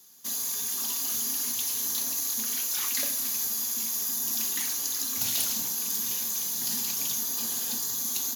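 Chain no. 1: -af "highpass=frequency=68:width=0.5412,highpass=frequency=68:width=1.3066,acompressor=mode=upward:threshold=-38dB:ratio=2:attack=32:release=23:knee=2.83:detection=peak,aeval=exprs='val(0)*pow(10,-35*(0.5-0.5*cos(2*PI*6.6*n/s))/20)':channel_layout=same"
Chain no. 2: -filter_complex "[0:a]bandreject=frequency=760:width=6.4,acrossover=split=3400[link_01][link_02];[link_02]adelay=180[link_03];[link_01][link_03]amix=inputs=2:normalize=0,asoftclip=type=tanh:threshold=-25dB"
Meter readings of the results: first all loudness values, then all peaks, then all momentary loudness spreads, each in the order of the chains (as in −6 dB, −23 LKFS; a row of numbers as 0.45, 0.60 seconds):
−33.5, −29.0 LKFS; −15.0, −25.0 dBFS; 2, 1 LU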